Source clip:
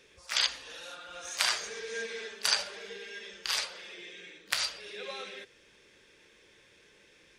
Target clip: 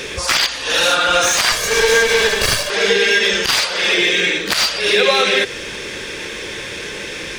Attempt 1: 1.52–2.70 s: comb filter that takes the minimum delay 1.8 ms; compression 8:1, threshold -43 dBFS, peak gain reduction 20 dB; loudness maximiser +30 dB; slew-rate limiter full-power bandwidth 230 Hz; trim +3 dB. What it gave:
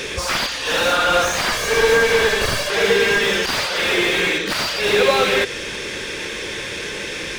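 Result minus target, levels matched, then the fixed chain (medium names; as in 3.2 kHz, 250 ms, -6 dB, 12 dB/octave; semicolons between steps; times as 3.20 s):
slew-rate limiter: distortion +9 dB
1.52–2.70 s: comb filter that takes the minimum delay 1.8 ms; compression 8:1, threshold -43 dBFS, peak gain reduction 20 dB; loudness maximiser +30 dB; slew-rate limiter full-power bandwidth 733 Hz; trim +3 dB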